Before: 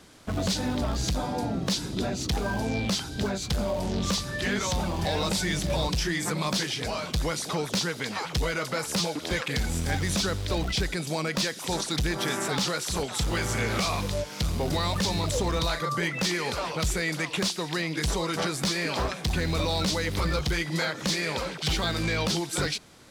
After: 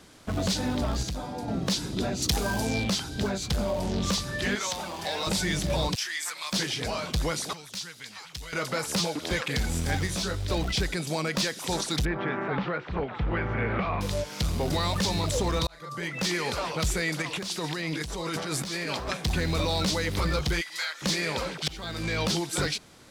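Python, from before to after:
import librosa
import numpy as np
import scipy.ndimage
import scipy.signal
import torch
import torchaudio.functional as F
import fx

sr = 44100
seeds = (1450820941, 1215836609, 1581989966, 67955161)

y = fx.high_shelf(x, sr, hz=4500.0, db=11.5, at=(2.22, 2.84))
y = fx.highpass(y, sr, hz=720.0, slope=6, at=(4.55, 5.27))
y = fx.highpass(y, sr, hz=1500.0, slope=12, at=(5.94, 6.52), fade=0.02)
y = fx.tone_stack(y, sr, knobs='5-5-5', at=(7.53, 8.53))
y = fx.detune_double(y, sr, cents=fx.line((10.06, 13.0), (10.47, 25.0)), at=(10.06, 10.47), fade=0.02)
y = fx.lowpass(y, sr, hz=2300.0, slope=24, at=(12.05, 14.01))
y = fx.over_compress(y, sr, threshold_db=-32.0, ratio=-1.0, at=(17.22, 19.17))
y = fx.highpass(y, sr, hz=1500.0, slope=12, at=(20.6, 21.01), fade=0.02)
y = fx.edit(y, sr, fx.clip_gain(start_s=1.03, length_s=0.45, db=-5.5),
    fx.fade_in_span(start_s=15.67, length_s=0.68),
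    fx.fade_in_from(start_s=21.68, length_s=0.57, floor_db=-20.0), tone=tone)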